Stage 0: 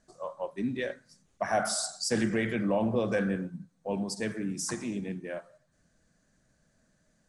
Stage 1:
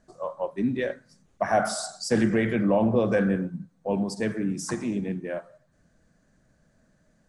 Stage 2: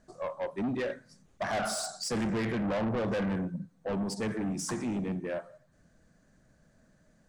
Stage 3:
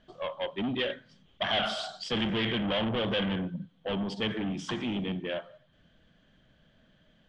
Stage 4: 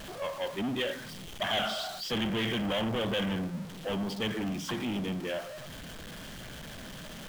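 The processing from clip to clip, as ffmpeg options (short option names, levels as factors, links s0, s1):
-af "highshelf=f=2400:g=-8.5,volume=2"
-af "asoftclip=type=tanh:threshold=0.0398"
-af "lowpass=f=3200:t=q:w=14"
-af "aeval=exprs='val(0)+0.5*0.0178*sgn(val(0))':c=same,volume=0.708"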